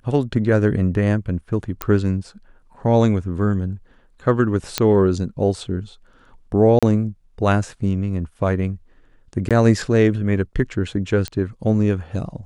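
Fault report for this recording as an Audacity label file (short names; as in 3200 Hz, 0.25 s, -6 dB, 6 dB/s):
1.820000	1.820000	pop -6 dBFS
4.780000	4.780000	pop -3 dBFS
6.790000	6.830000	gap 36 ms
9.490000	9.510000	gap 17 ms
11.280000	11.280000	pop -12 dBFS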